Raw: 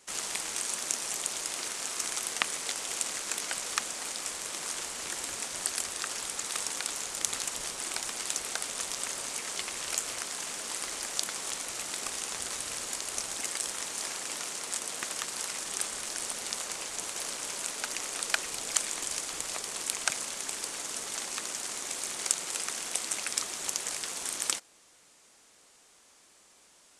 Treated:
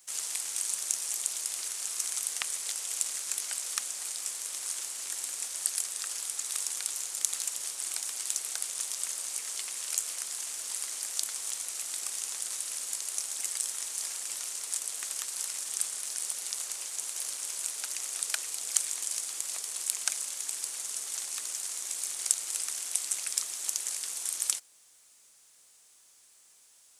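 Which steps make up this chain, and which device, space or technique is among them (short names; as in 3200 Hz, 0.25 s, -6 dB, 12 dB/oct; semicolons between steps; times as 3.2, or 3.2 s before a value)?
turntable without a phono preamp (RIAA curve recording; white noise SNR 37 dB); gain -10 dB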